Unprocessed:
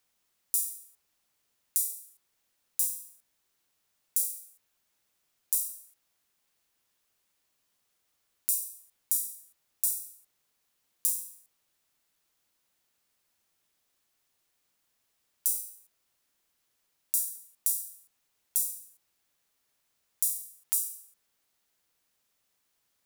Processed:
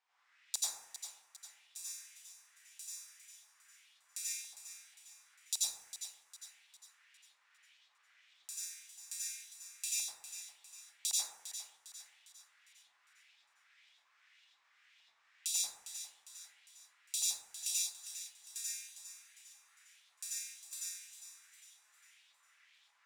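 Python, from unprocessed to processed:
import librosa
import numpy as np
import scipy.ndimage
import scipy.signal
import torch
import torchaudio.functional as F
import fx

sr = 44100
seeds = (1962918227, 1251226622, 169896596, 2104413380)

p1 = fx.low_shelf(x, sr, hz=450.0, db=-11.5)
p2 = fx.filter_lfo_bandpass(p1, sr, shape='saw_up', hz=1.8, low_hz=840.0, high_hz=3800.0, q=4.2)
p3 = fx.band_shelf(p2, sr, hz=3700.0, db=9.5, octaves=2.5)
p4 = p3 + fx.echo_thinned(p3, sr, ms=404, feedback_pct=44, hz=420.0, wet_db=-11.0, dry=0)
p5 = fx.rev_plate(p4, sr, seeds[0], rt60_s=0.9, hf_ratio=0.3, predelay_ms=75, drr_db=-9.0)
y = p5 * 10.0 ** (7.0 / 20.0)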